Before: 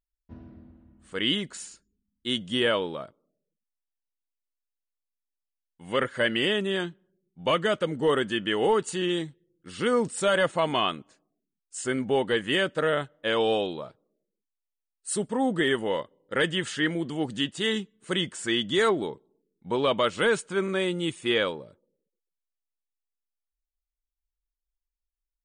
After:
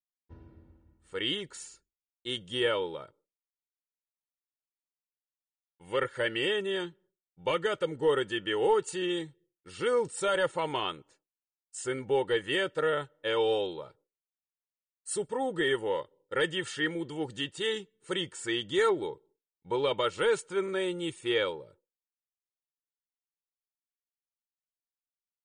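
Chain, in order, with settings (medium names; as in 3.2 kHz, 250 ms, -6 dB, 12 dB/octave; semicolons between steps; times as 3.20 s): expander -53 dBFS; comb 2.2 ms, depth 66%; trim -6 dB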